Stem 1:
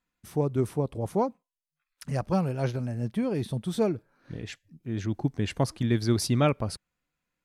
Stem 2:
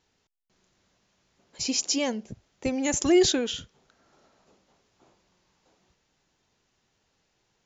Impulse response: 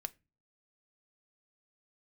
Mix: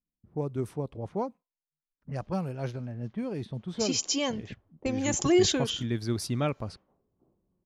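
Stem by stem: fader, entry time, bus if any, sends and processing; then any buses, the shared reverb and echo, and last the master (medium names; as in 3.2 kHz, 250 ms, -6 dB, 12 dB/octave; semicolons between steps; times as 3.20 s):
-5.5 dB, 0.00 s, no send, none
-2.5 dB, 2.20 s, no send, small resonant body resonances 1.1/3.1 kHz, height 9 dB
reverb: none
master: level-controlled noise filter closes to 320 Hz, open at -28.5 dBFS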